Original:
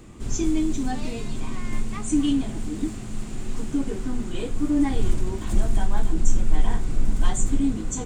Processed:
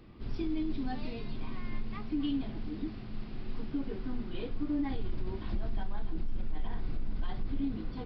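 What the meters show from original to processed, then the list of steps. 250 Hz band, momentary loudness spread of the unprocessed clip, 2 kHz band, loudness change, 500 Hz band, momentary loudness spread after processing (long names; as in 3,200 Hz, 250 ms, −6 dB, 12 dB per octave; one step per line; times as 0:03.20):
−10.5 dB, 10 LU, −10.0 dB, −11.0 dB, −9.5 dB, 8 LU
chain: downsampling to 11,025 Hz
brickwall limiter −16 dBFS, peak gain reduction 10.5 dB
level −8.5 dB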